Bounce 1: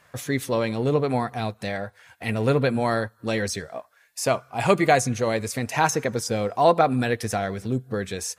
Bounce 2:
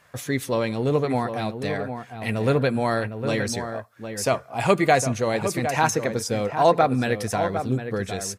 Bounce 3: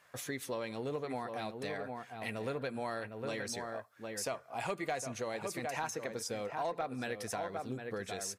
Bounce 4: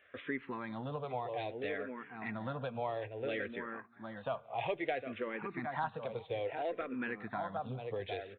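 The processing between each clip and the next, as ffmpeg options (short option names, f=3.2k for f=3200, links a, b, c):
-filter_complex "[0:a]asplit=2[a][b];[b]adelay=758,volume=-8dB,highshelf=f=4k:g=-17.1[c];[a][c]amix=inputs=2:normalize=0"
-af "lowshelf=f=210:g=-11.5,asoftclip=type=tanh:threshold=-8dB,acompressor=threshold=-30dB:ratio=3,volume=-6.5dB"
-filter_complex "[0:a]asplit=2[a][b];[b]adelay=396.5,volume=-23dB,highshelf=f=4k:g=-8.92[c];[a][c]amix=inputs=2:normalize=0,aresample=8000,aresample=44100,asplit=2[d][e];[e]afreqshift=-0.6[f];[d][f]amix=inputs=2:normalize=1,volume=3dB"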